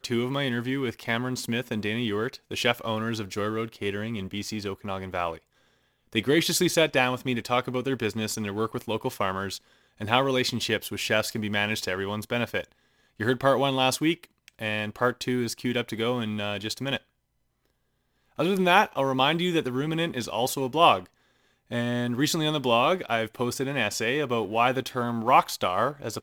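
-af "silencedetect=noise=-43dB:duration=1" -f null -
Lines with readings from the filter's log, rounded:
silence_start: 16.98
silence_end: 18.38 | silence_duration: 1.40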